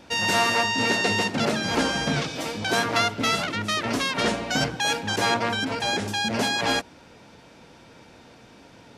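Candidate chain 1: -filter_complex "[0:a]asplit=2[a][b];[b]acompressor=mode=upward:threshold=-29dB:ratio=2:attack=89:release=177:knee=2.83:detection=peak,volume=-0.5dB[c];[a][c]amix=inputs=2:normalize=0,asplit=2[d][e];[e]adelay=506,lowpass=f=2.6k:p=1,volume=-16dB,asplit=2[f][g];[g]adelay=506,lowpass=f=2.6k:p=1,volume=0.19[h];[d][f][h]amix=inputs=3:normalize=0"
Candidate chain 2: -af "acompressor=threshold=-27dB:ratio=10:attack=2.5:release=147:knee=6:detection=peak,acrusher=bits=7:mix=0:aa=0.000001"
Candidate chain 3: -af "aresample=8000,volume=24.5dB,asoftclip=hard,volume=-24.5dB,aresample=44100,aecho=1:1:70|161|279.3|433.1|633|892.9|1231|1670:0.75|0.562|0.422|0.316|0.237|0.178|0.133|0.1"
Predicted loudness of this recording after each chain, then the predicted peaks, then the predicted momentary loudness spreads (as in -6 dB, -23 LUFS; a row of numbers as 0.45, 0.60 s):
-17.5, -31.5, -24.5 LUFS; -2.5, -19.0, -13.5 dBFS; 21, 17, 15 LU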